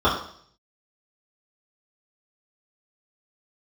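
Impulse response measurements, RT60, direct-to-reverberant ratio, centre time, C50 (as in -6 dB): 0.60 s, -10.5 dB, 35 ms, 5.0 dB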